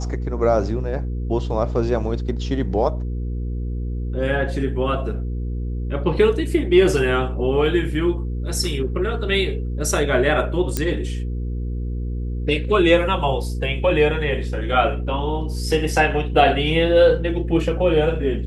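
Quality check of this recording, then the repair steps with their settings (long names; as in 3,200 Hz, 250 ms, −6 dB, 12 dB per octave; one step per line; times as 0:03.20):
mains hum 60 Hz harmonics 8 −25 dBFS
0:10.77: click −7 dBFS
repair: click removal
hum removal 60 Hz, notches 8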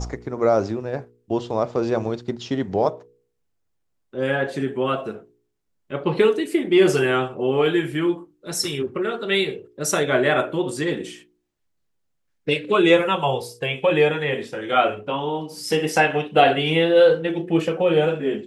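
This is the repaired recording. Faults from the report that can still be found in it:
none of them is left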